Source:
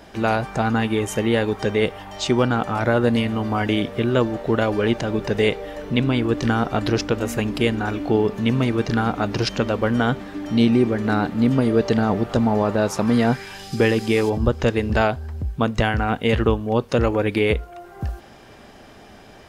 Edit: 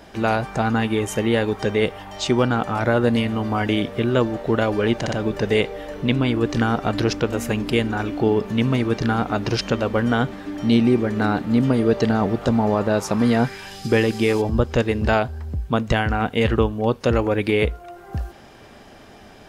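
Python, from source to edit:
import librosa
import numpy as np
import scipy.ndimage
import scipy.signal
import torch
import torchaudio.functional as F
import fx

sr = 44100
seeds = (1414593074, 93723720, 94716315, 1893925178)

y = fx.edit(x, sr, fx.stutter(start_s=5.0, slice_s=0.06, count=3), tone=tone)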